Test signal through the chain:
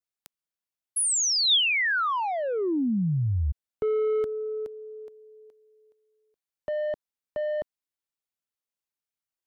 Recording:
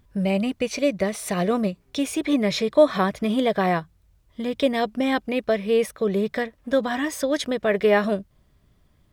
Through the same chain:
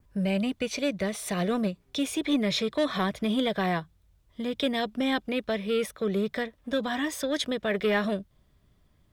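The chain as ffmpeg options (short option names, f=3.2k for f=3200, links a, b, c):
-filter_complex "[0:a]adynamicequalizer=threshold=0.00355:dfrequency=3500:dqfactor=4.9:tfrequency=3500:tqfactor=4.9:attack=5:release=100:ratio=0.375:range=3:mode=boostabove:tftype=bell,acrossover=split=350|1200|2300[a][b][c][d];[b]asoftclip=type=tanh:threshold=-25dB[e];[a][e][c][d]amix=inputs=4:normalize=0,volume=-3.5dB"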